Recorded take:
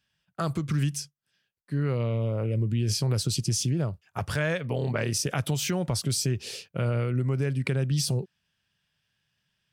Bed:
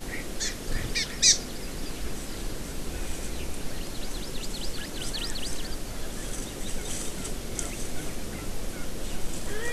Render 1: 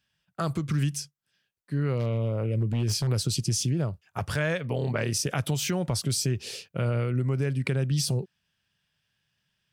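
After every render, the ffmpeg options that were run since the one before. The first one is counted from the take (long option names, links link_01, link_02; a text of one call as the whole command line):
ffmpeg -i in.wav -filter_complex "[0:a]asettb=1/sr,asplit=3[link_01][link_02][link_03];[link_01]atrim=end=1.974[link_04];[link_02]atrim=start=1.97:end=3.1,asetpts=PTS-STARTPTS,afade=type=in:duration=0.004:curve=qsin,afade=type=out:start_time=1.126:duration=0.004:curve=qsin,aeval=exprs='0.1*(abs(mod(val(0)/0.1+3,4)-2)-1)':channel_layout=same[link_05];[link_03]atrim=start=3.096[link_06];[link_04][link_05]acrossfade=duration=0.004:curve1=hsin:curve2=qsin[link_07];[link_07][link_06]acrossfade=duration=0.004:curve1=qsin:curve2=hsin" out.wav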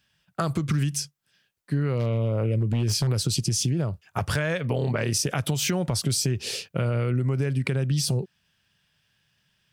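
ffmpeg -i in.wav -filter_complex "[0:a]asplit=2[link_01][link_02];[link_02]alimiter=limit=-19dB:level=0:latency=1:release=371,volume=2dB[link_03];[link_01][link_03]amix=inputs=2:normalize=0,acompressor=threshold=-21dB:ratio=6" out.wav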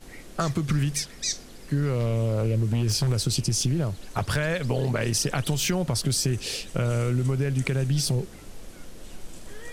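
ffmpeg -i in.wav -i bed.wav -filter_complex "[1:a]volume=-9.5dB[link_01];[0:a][link_01]amix=inputs=2:normalize=0" out.wav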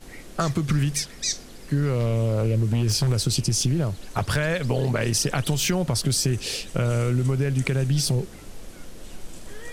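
ffmpeg -i in.wav -af "volume=2dB" out.wav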